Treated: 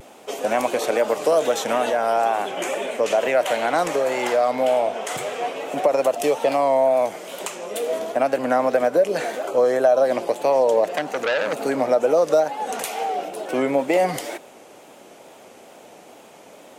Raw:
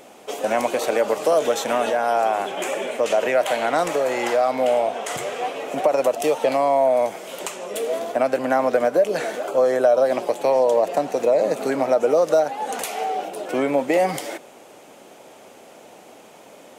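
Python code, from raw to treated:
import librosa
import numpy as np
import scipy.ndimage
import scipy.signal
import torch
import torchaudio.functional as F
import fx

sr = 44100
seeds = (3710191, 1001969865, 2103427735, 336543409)

y = fx.wow_flutter(x, sr, seeds[0], rate_hz=2.1, depth_cents=64.0)
y = fx.transformer_sat(y, sr, knee_hz=2200.0, at=(10.84, 11.53))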